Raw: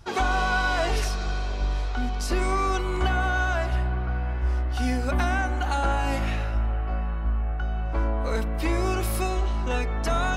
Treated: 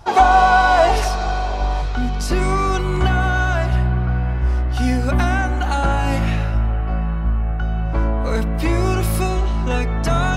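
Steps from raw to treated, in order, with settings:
parametric band 790 Hz +11.5 dB 0.89 octaves, from 0:01.82 140 Hz
level +5 dB

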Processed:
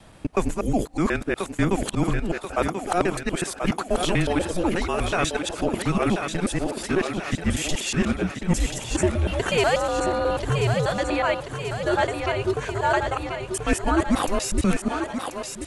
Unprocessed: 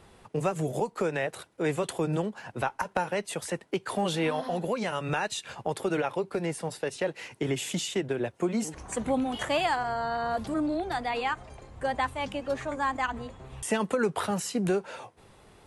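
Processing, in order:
reversed piece by piece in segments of 122 ms
frequency shifter −180 Hz
feedback echo with a high-pass in the loop 1,035 ms, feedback 57%, high-pass 200 Hz, level −6 dB
level +6 dB

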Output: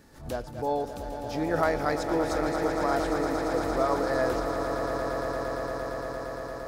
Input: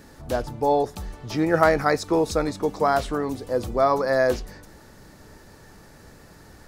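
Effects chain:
echo that builds up and dies away 115 ms, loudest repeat 8, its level −10 dB
background raised ahead of every attack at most 120 dB per second
level −8 dB

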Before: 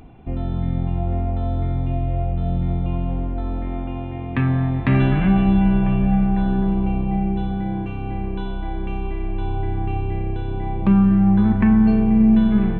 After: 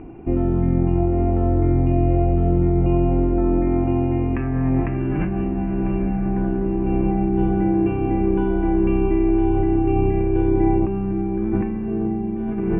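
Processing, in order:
elliptic low-pass filter 2,700 Hz, stop band 40 dB
parametric band 340 Hz +14.5 dB 0.61 octaves
compressor whose output falls as the input rises −20 dBFS, ratio −1
feedback delay with all-pass diffusion 1,005 ms, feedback 69%, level −12 dB

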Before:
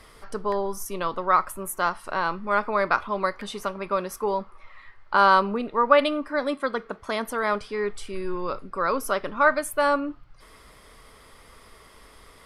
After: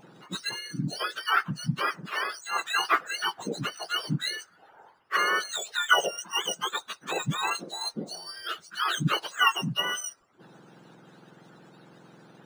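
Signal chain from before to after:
frequency axis turned over on the octave scale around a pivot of 1,300 Hz
harmonic and percussive parts rebalanced harmonic −12 dB
linearly interpolated sample-rate reduction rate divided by 3×
level +3.5 dB

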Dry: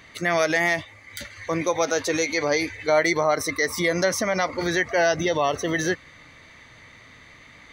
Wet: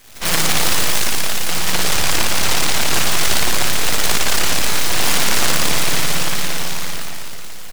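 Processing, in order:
0:03.74–0:04.16: three sine waves on the formant tracks
echo with shifted repeats 246 ms, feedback 34%, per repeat +53 Hz, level −3 dB
single-sideband voice off tune +340 Hz 190–2,100 Hz
half-wave rectification
spring reverb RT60 2.7 s, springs 56 ms, chirp 30 ms, DRR −7 dB
downward compressor 3 to 1, threshold −21 dBFS, peak gain reduction 10.5 dB
short delay modulated by noise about 1,600 Hz, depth 0.46 ms
level +8.5 dB

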